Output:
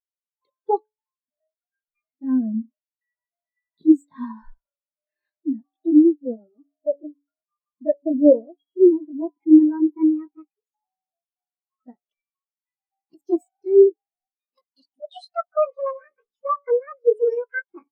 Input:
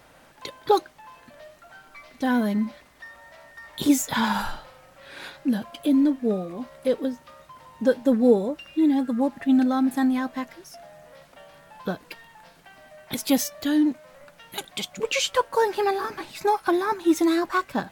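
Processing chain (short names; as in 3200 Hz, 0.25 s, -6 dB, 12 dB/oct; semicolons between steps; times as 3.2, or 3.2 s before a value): gliding pitch shift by +6 st starting unshifted; de-hum 142.7 Hz, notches 8; spectral expander 2.5:1; gain +6 dB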